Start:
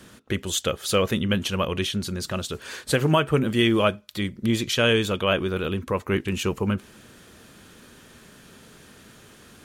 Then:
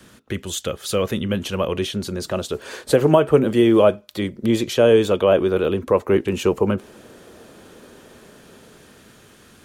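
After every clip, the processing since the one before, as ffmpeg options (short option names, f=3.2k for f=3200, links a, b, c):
-filter_complex "[0:a]acrossover=split=350|770|7500[a][b][c][d];[b]dynaudnorm=f=310:g=11:m=13dB[e];[c]alimiter=limit=-20dB:level=0:latency=1:release=17[f];[a][e][f][d]amix=inputs=4:normalize=0"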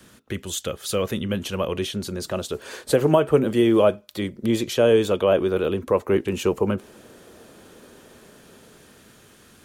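-af "highshelf=f=7.3k:g=4,volume=-3dB"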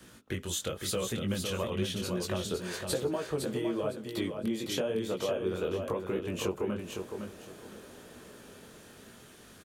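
-af "acompressor=threshold=-26dB:ratio=12,flanger=delay=16:depth=7.4:speed=0.97,aecho=1:1:509|1018|1527:0.501|0.115|0.0265"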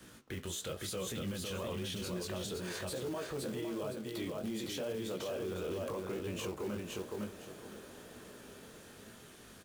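-af "alimiter=level_in=6dB:limit=-24dB:level=0:latency=1:release=11,volume=-6dB,acrusher=bits=4:mode=log:mix=0:aa=0.000001,flanger=delay=9.2:depth=9.3:regen=83:speed=1.1:shape=sinusoidal,volume=3dB"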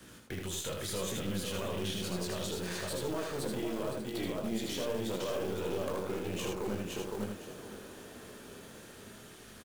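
-filter_complex "[0:a]aeval=exprs='0.0376*(cos(1*acos(clip(val(0)/0.0376,-1,1)))-cos(1*PI/2))+0.0119*(cos(2*acos(clip(val(0)/0.0376,-1,1)))-cos(2*PI/2))':c=same,asplit=2[a][b];[b]aecho=0:1:79:0.631[c];[a][c]amix=inputs=2:normalize=0,volume=1.5dB"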